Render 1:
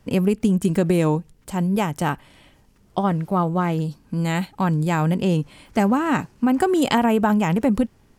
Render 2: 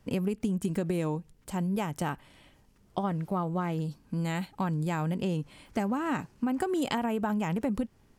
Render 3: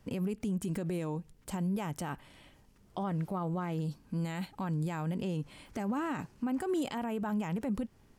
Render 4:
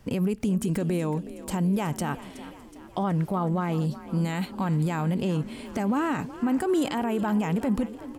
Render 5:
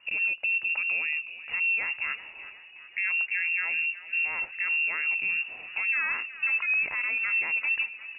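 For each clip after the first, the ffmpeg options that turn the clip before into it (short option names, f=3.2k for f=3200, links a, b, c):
-af "acompressor=threshold=-21dB:ratio=3,volume=-6dB"
-af "alimiter=level_in=2dB:limit=-24dB:level=0:latency=1:release=47,volume=-2dB"
-filter_complex "[0:a]asplit=6[a][b][c][d][e][f];[b]adelay=371,afreqshift=41,volume=-15.5dB[g];[c]adelay=742,afreqshift=82,volume=-20.5dB[h];[d]adelay=1113,afreqshift=123,volume=-25.6dB[i];[e]adelay=1484,afreqshift=164,volume=-30.6dB[j];[f]adelay=1855,afreqshift=205,volume=-35.6dB[k];[a][g][h][i][j][k]amix=inputs=6:normalize=0,volume=8dB"
-af "lowpass=f=2.5k:t=q:w=0.5098,lowpass=f=2.5k:t=q:w=0.6013,lowpass=f=2.5k:t=q:w=0.9,lowpass=f=2.5k:t=q:w=2.563,afreqshift=-2900,volume=-2.5dB"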